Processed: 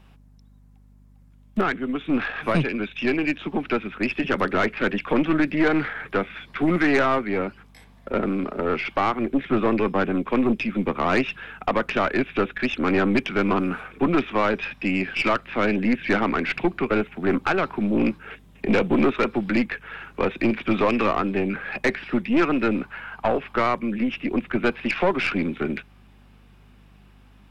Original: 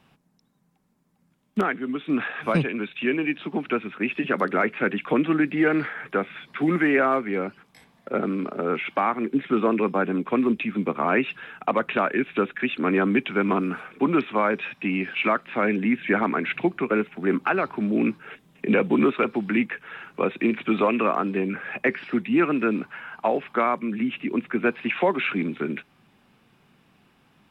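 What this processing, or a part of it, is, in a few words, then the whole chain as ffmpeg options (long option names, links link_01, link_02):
valve amplifier with mains hum: -af "aeval=exprs='(tanh(7.08*val(0)+0.5)-tanh(0.5))/7.08':channel_layout=same,aeval=exprs='val(0)+0.00178*(sin(2*PI*50*n/s)+sin(2*PI*2*50*n/s)/2+sin(2*PI*3*50*n/s)/3+sin(2*PI*4*50*n/s)/4+sin(2*PI*5*50*n/s)/5)':channel_layout=same,volume=4dB"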